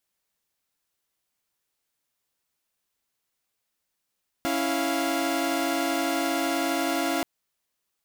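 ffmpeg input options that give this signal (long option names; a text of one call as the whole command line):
ffmpeg -f lavfi -i "aevalsrc='0.0501*((2*mod(277.18*t,1)-1)+(2*mod(329.63*t,1)-1)+(2*mod(698.46*t,1)-1))':duration=2.78:sample_rate=44100" out.wav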